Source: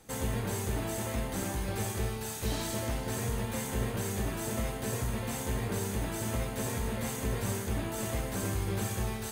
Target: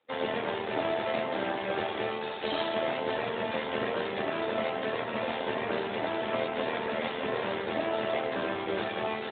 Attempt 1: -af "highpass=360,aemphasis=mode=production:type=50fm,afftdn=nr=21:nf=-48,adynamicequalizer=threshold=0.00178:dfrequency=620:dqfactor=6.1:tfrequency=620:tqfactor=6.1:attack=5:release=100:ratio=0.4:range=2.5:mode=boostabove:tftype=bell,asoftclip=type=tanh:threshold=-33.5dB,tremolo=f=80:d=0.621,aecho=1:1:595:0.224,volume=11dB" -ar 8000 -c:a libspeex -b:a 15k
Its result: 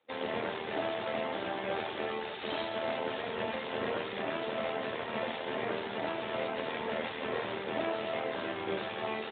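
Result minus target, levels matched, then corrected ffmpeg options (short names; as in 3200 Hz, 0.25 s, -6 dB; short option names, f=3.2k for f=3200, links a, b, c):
soft clip: distortion +13 dB
-af "highpass=360,aemphasis=mode=production:type=50fm,afftdn=nr=21:nf=-48,adynamicequalizer=threshold=0.00178:dfrequency=620:dqfactor=6.1:tfrequency=620:tqfactor=6.1:attack=5:release=100:ratio=0.4:range=2.5:mode=boostabove:tftype=bell,asoftclip=type=tanh:threshold=-22dB,tremolo=f=80:d=0.621,aecho=1:1:595:0.224,volume=11dB" -ar 8000 -c:a libspeex -b:a 15k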